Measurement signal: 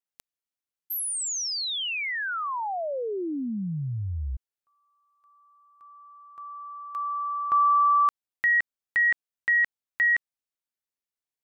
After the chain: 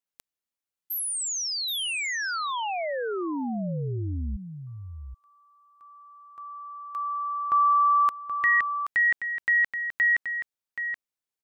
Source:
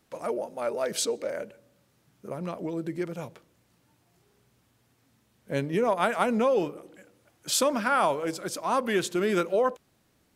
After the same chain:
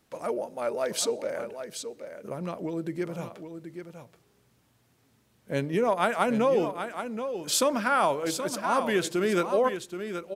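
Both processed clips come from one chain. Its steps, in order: delay 777 ms -9 dB

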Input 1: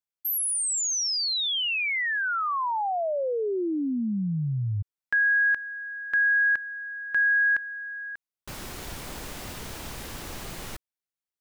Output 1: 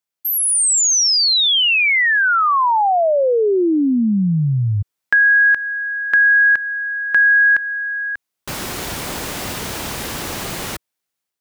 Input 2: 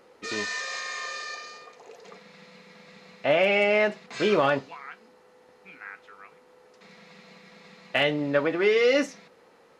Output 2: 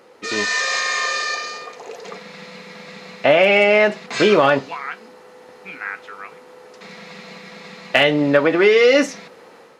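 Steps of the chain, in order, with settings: level rider gain up to 6 dB; high-pass 110 Hz 6 dB/octave; compression 2:1, threshold -20 dBFS; hard clipper -10 dBFS; trim +7 dB

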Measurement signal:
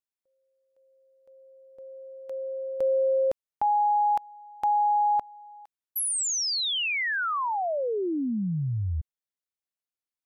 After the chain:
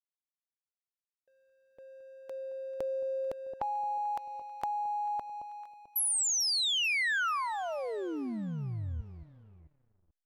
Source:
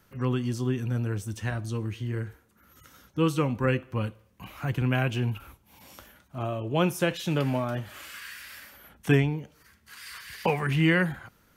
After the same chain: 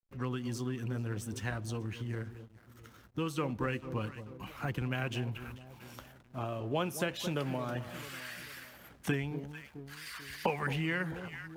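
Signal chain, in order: expander -59 dBFS; echo whose repeats swap between lows and highs 220 ms, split 990 Hz, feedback 63%, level -13 dB; compression 2.5:1, threshold -28 dBFS; harmonic-percussive split harmonic -6 dB; hysteresis with a dead band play -53 dBFS

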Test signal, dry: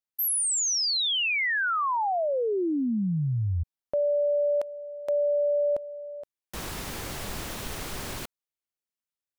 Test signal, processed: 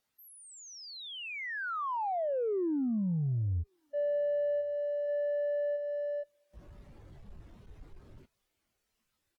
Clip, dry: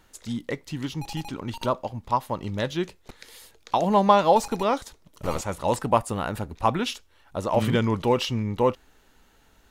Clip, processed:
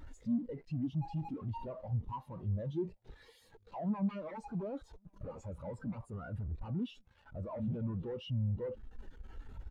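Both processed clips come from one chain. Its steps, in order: jump at every zero crossing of -27.5 dBFS; treble shelf 5.8 kHz -3 dB; in parallel at -0.5 dB: compression, threshold -30 dBFS; on the sum: wavefolder -15.5 dBFS; valve stage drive 27 dB, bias 0.35; on a send: delay 1126 ms -17 dB; on the sum: spectral contrast expander 2.5:1; trim -4.5 dB

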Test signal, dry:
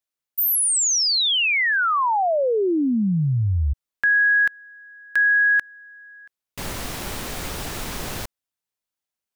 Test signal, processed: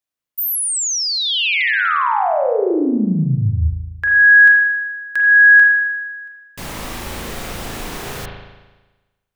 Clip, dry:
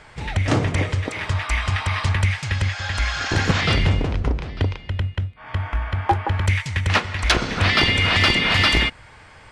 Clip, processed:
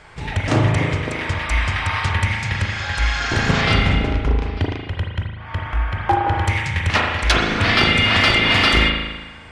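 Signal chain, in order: spring tank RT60 1.2 s, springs 37 ms, chirp 55 ms, DRR -0.5 dB

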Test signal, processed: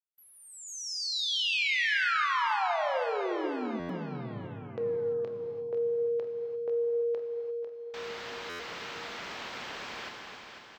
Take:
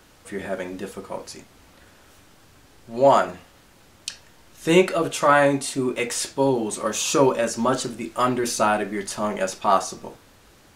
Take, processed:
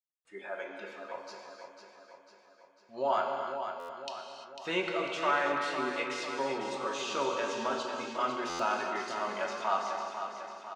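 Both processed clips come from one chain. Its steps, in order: spectral noise reduction 15 dB; gate -48 dBFS, range -10 dB; high-pass 1.4 kHz 6 dB/octave; treble shelf 12 kHz -3.5 dB; in parallel at +2 dB: compression 6:1, threshold -31 dBFS; on the sum: bit crusher 10-bit; distance through air 210 m; on a send: feedback delay 498 ms, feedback 53%, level -8 dB; on the sum: gated-style reverb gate 370 ms flat, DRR 2.5 dB; buffer glitch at 3.79/8.49 s, samples 512, times 8; trim -8.5 dB

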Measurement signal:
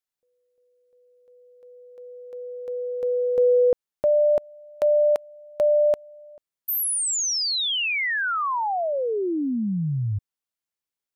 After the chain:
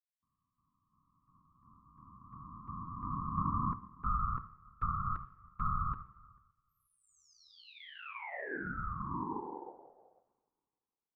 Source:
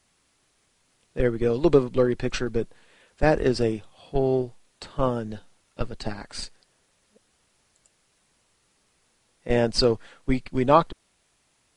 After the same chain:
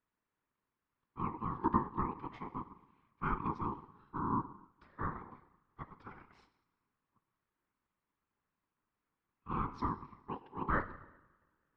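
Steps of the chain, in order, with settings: ladder high-pass 260 Hz, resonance 25%; two-slope reverb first 0.95 s, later 2.7 s, from -23 dB, DRR 11 dB; whisper effect; low-pass 1.3 kHz 12 dB/octave; ring modulator 630 Hz; trim -6.5 dB

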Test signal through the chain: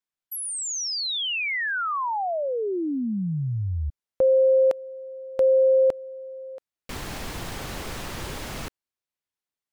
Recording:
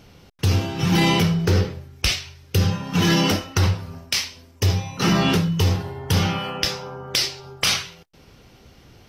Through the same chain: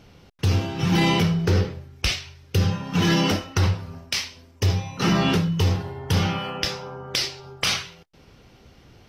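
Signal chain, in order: treble shelf 7.2 kHz -7 dB; trim -1.5 dB

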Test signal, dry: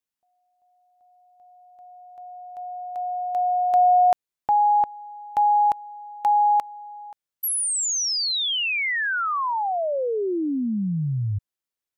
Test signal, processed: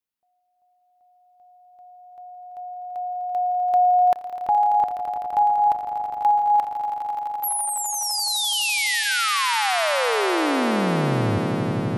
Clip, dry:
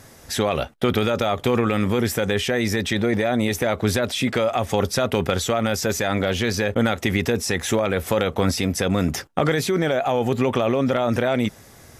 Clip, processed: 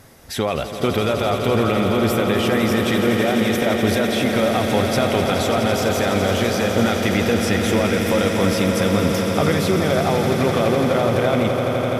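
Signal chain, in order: peaking EQ 6.9 kHz -5 dB 0.87 oct; band-stop 1.7 kHz, Q 24; echo with a slow build-up 84 ms, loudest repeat 8, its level -10.5 dB

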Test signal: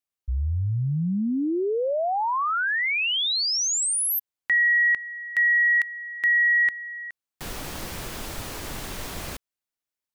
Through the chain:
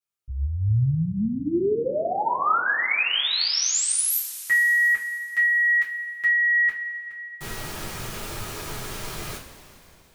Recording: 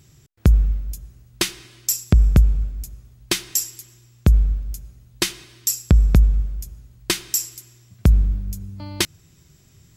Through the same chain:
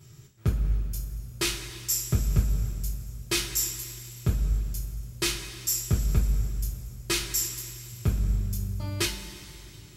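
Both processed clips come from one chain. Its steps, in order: peak limiter -14 dBFS; two-slope reverb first 0.28 s, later 3.1 s, from -18 dB, DRR -7.5 dB; trim -7 dB

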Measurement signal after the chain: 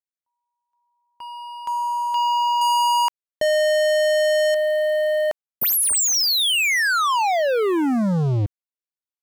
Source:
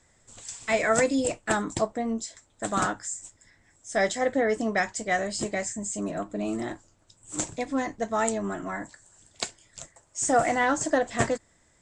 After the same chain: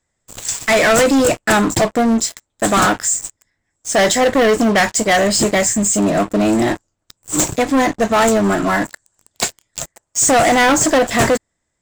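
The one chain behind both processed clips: waveshaping leveller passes 5

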